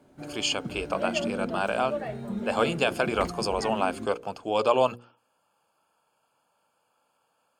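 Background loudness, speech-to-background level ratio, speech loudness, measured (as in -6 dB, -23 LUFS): -35.0 LUFS, 7.0 dB, -28.0 LUFS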